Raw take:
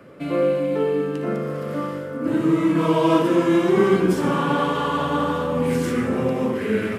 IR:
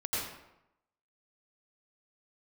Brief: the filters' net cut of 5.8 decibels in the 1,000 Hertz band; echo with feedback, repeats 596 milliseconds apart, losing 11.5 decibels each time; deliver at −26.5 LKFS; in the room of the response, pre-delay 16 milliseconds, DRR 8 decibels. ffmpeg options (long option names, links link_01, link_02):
-filter_complex "[0:a]equalizer=frequency=1000:width_type=o:gain=-7,aecho=1:1:596|1192|1788:0.266|0.0718|0.0194,asplit=2[link_01][link_02];[1:a]atrim=start_sample=2205,adelay=16[link_03];[link_02][link_03]afir=irnorm=-1:irlink=0,volume=-14dB[link_04];[link_01][link_04]amix=inputs=2:normalize=0,volume=-5.5dB"